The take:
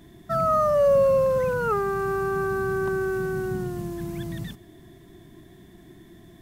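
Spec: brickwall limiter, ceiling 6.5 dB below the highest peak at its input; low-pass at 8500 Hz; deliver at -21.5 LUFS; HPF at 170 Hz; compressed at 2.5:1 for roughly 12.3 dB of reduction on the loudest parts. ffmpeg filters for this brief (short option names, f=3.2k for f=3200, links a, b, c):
-af "highpass=170,lowpass=8.5k,acompressor=threshold=-36dB:ratio=2.5,volume=16dB,alimiter=limit=-14.5dB:level=0:latency=1"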